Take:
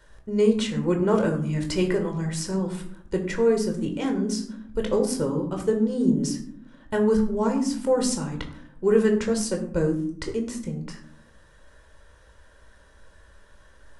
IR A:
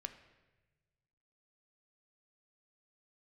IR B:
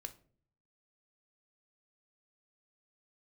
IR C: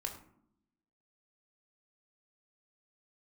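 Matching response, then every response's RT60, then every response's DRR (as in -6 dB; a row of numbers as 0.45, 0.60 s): C; 1.2 s, not exponential, 0.70 s; 7.5, 8.5, 2.5 dB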